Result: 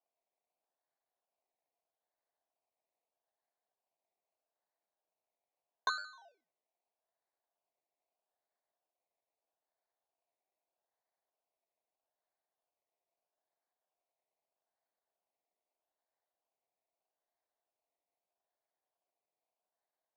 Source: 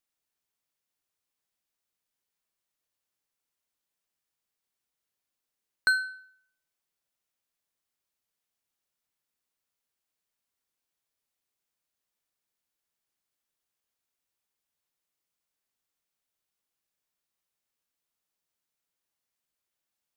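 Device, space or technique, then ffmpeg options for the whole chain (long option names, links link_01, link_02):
circuit-bent sampling toy: -af "acrusher=samples=22:mix=1:aa=0.000001:lfo=1:lforange=13.2:lforate=0.79,highpass=580,equalizer=frequency=680:width_type=q:width=4:gain=9,equalizer=frequency=1300:width_type=q:width=4:gain=-10,equalizer=frequency=3200:width_type=q:width=4:gain=-8,lowpass=frequency=5000:width=0.5412,lowpass=frequency=5000:width=1.3066,volume=-6.5dB"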